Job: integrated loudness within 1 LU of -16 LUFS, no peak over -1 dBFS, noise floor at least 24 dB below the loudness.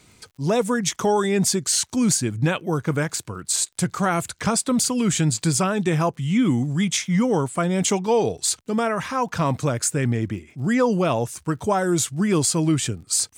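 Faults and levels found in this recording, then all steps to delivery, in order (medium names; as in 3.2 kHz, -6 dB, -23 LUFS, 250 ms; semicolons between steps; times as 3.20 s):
tick rate 46 per s; loudness -22.0 LUFS; peak level -8.5 dBFS; loudness target -16.0 LUFS
-> de-click; trim +6 dB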